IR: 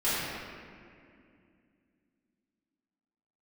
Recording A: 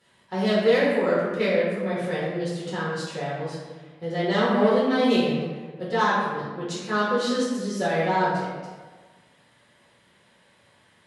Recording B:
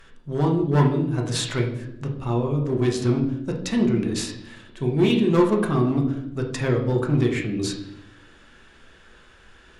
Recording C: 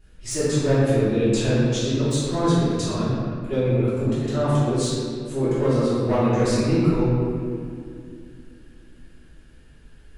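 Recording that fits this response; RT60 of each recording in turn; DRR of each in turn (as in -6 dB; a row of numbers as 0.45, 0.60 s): C; 1.4, 0.80, 2.4 s; -9.5, 0.0, -14.5 dB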